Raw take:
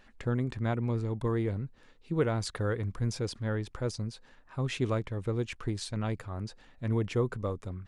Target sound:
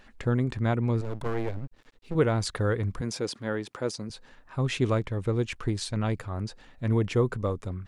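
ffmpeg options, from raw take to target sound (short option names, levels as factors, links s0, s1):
-filter_complex "[0:a]asettb=1/sr,asplit=3[s0][s1][s2];[s0]atrim=end=1.014[s3];[s1]atrim=start=1.01:end=2.15,asetpts=PTS-STARTPTS,afade=t=in:d=0.004:c=qsin,afade=t=out:st=1.136:d=0.004:c=qsin,aeval=exprs='max(val(0),0)':c=same[s4];[s2]atrim=start=2.146[s5];[s3][s4]acrossfade=d=0.004:c1=hsin:c2=qsin[s6];[s6][s5]acrossfade=d=0.004:c1=qsin:c2=hsin,asettb=1/sr,asplit=3[s7][s8][s9];[s7]atrim=end=3.014[s10];[s8]atrim=start=3.01:end=4.1,asetpts=PTS-STARTPTS,afade=t=in:d=0.004:c=qsin,afade=t=out:st=1.086:d=0.004:c=qsin,highpass=210[s11];[s9]atrim=start=4.096[s12];[s10][s11]acrossfade=d=0.004:c1=hsin:c2=qsin[s13];[s13][s12]acrossfade=d=0.004:c1=qsin:c2=hsin,volume=1.68"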